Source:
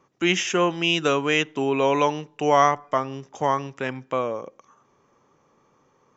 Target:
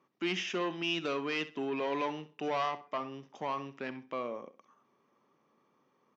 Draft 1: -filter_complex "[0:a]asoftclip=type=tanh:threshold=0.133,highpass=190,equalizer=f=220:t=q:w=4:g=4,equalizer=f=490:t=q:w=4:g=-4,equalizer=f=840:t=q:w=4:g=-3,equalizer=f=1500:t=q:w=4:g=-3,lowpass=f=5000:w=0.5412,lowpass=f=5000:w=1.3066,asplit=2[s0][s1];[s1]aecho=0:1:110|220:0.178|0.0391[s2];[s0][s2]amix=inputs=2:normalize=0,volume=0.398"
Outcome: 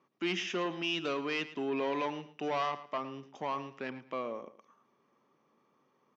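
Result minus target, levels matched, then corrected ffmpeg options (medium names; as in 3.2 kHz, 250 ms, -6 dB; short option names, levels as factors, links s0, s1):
echo 45 ms late
-filter_complex "[0:a]asoftclip=type=tanh:threshold=0.133,highpass=190,equalizer=f=220:t=q:w=4:g=4,equalizer=f=490:t=q:w=4:g=-4,equalizer=f=840:t=q:w=4:g=-3,equalizer=f=1500:t=q:w=4:g=-3,lowpass=f=5000:w=0.5412,lowpass=f=5000:w=1.3066,asplit=2[s0][s1];[s1]aecho=0:1:65|130:0.178|0.0391[s2];[s0][s2]amix=inputs=2:normalize=0,volume=0.398"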